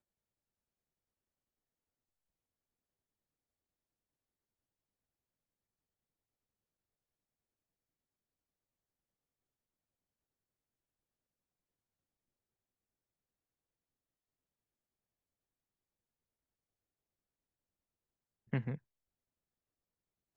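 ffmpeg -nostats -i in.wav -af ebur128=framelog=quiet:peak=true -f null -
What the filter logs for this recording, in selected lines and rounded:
Integrated loudness:
  I:         -40.5 LUFS
  Threshold: -50.4 LUFS
Loudness range:
  LRA:         0.7 LU
  Threshold: -67.5 LUFS
  LRA low:   -48.1 LUFS
  LRA high:  -47.4 LUFS
True peak:
  Peak:      -20.8 dBFS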